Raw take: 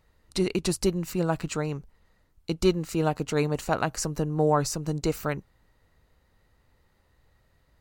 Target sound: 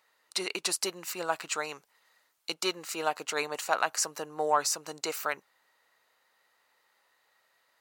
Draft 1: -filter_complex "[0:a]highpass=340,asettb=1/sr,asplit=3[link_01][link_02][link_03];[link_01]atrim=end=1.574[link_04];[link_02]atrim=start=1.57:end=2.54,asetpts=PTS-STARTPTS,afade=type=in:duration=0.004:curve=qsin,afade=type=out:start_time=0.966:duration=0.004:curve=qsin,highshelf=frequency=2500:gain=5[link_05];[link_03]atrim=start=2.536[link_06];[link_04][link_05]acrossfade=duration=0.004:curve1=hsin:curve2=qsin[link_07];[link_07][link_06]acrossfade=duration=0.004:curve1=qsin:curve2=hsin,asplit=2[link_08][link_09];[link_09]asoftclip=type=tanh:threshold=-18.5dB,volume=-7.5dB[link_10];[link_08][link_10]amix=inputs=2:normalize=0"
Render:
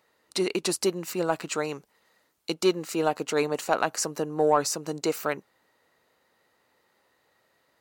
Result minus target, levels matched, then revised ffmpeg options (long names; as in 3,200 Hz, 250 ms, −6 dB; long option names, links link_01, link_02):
250 Hz band +8.5 dB
-filter_complex "[0:a]highpass=830,asettb=1/sr,asplit=3[link_01][link_02][link_03];[link_01]atrim=end=1.574[link_04];[link_02]atrim=start=1.57:end=2.54,asetpts=PTS-STARTPTS,afade=type=in:duration=0.004:curve=qsin,afade=type=out:start_time=0.966:duration=0.004:curve=qsin,highshelf=frequency=2500:gain=5[link_05];[link_03]atrim=start=2.536[link_06];[link_04][link_05]acrossfade=duration=0.004:curve1=hsin:curve2=qsin[link_07];[link_07][link_06]acrossfade=duration=0.004:curve1=qsin:curve2=hsin,asplit=2[link_08][link_09];[link_09]asoftclip=type=tanh:threshold=-18.5dB,volume=-7.5dB[link_10];[link_08][link_10]amix=inputs=2:normalize=0"